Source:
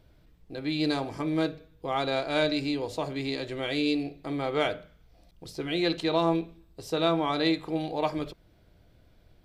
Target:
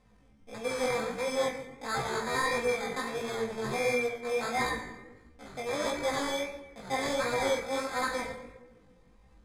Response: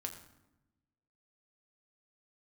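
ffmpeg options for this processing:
-filter_complex "[0:a]aecho=1:1:6.6:0.69,acrusher=samples=26:mix=1:aa=0.000001,asoftclip=type=hard:threshold=-21dB,lowpass=f=6.4k:w=0.5412,lowpass=f=6.4k:w=1.3066[a];[1:a]atrim=start_sample=2205,asetrate=39249,aresample=44100[b];[a][b]afir=irnorm=-1:irlink=0,asetrate=74167,aresample=44100,atempo=0.594604,flanger=delay=16:depth=7:speed=1.5"

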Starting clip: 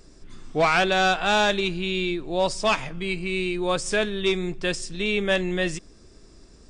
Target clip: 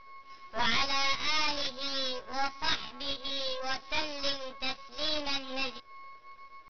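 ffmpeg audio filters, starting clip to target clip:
-filter_complex "[0:a]aemphasis=mode=production:type=riaa,asplit=2[a][b];[b]aeval=exprs='0.126*(abs(mod(val(0)/0.126+3,4)-2)-1)':c=same,volume=-10dB[c];[a][c]amix=inputs=2:normalize=0,aeval=exprs='val(0)+0.0126*sin(2*PI*750*n/s)':c=same,flanger=delay=19.5:depth=5.8:speed=0.58,aresample=8000,aeval=exprs='max(val(0),0)':c=same,aresample=44100,asetrate=64194,aresample=44100,atempo=0.686977,volume=-2.5dB"

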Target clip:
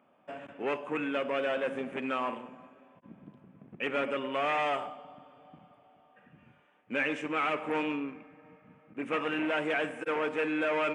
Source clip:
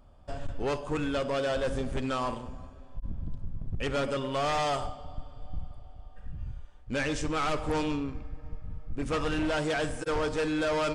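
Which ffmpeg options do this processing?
-af "highpass=f=200:w=0.5412,highpass=f=200:w=1.3066,highshelf=f=3.4k:t=q:w=3:g=-11,volume=-2dB"

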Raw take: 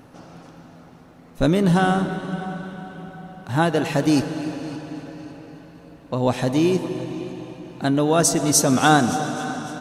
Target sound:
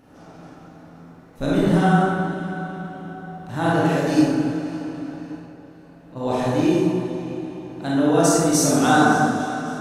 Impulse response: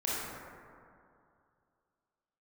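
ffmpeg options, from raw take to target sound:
-filter_complex "[0:a]asplit=3[a][b][c];[a]afade=t=out:st=5.39:d=0.02[d];[b]acompressor=threshold=-42dB:ratio=6,afade=t=in:st=5.39:d=0.02,afade=t=out:st=6.15:d=0.02[e];[c]afade=t=in:st=6.15:d=0.02[f];[d][e][f]amix=inputs=3:normalize=0[g];[1:a]atrim=start_sample=2205,afade=t=out:st=0.4:d=0.01,atrim=end_sample=18081[h];[g][h]afir=irnorm=-1:irlink=0,volume=-6.5dB"

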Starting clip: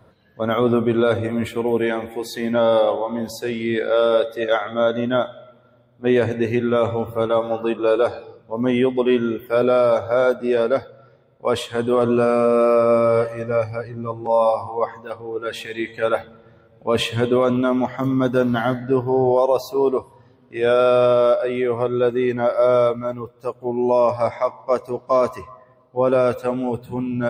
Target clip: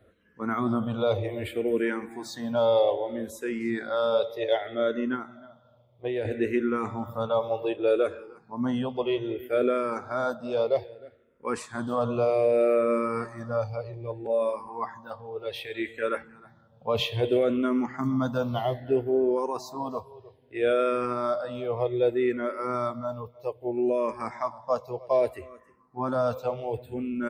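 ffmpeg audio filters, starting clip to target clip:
-filter_complex "[0:a]asettb=1/sr,asplit=3[a][b][c];[a]atrim=end=5.144[d];[b]atrim=start=5.14:end=6.25,asetpts=PTS-STARTPTS,afade=t=in:d=0.004:c=qsin,afade=t=out:st=1.106:d=0.004:c=qsin,acompressor=threshold=-20dB:ratio=5[e];[c]atrim=start=6.246[f];[d][e]acrossfade=d=0.004:c1=hsin:c2=qsin[g];[g][f]acrossfade=d=0.004:c1=qsin:c2=hsin,asplit=2[h][i];[i]aecho=0:1:310:0.0794[j];[h][j]amix=inputs=2:normalize=0,asplit=2[k][l];[l]afreqshift=-0.63[m];[k][m]amix=inputs=2:normalize=1,volume=-4.5dB"

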